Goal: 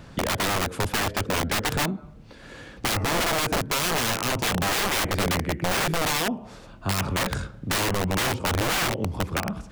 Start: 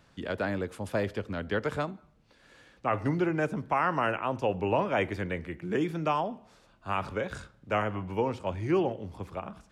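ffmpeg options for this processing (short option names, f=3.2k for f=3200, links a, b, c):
-filter_complex "[0:a]lowshelf=f=490:g=7.5,asplit=2[a][b];[b]alimiter=limit=-18.5dB:level=0:latency=1:release=354,volume=-2.5dB[c];[a][c]amix=inputs=2:normalize=0,aeval=exprs='(mod(10*val(0)+1,2)-1)/10':c=same,acompressor=threshold=-34dB:ratio=2,volume=7dB"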